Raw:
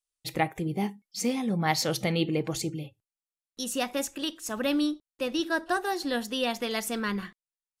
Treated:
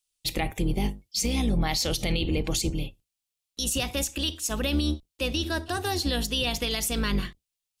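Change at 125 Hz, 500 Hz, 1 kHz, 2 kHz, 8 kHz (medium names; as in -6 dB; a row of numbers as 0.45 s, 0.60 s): +5.0 dB, -1.5 dB, -3.0 dB, -0.5 dB, +5.5 dB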